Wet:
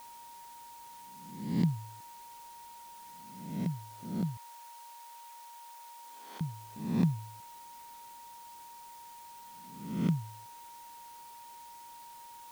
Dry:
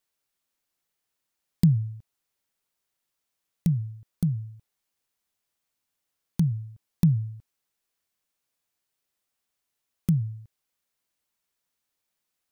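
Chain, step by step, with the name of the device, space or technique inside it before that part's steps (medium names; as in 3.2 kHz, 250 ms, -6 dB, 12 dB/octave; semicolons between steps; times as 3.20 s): reverse spectral sustain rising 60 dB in 0.79 s; shortwave radio (band-pass 270–2800 Hz; tremolo 0.4 Hz, depth 34%; whistle 940 Hz -50 dBFS; white noise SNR 18 dB); 4.37–6.41 s: high-pass 520 Hz 24 dB/octave; trim +1.5 dB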